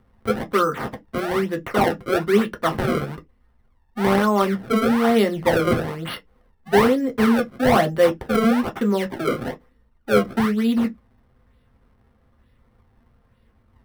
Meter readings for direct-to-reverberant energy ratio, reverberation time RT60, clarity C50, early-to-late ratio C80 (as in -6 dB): 4.0 dB, not exponential, 27.5 dB, 40.5 dB